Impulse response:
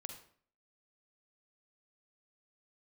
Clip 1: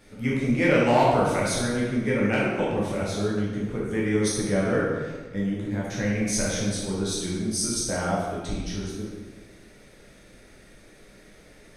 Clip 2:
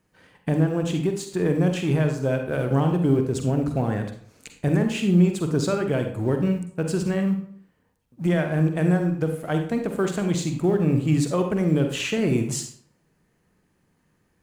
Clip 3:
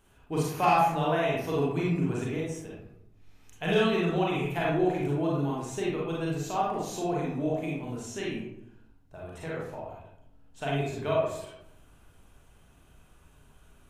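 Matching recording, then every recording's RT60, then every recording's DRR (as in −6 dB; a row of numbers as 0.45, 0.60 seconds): 2; 1.4, 0.50, 0.80 seconds; −6.0, 5.0, −5.0 decibels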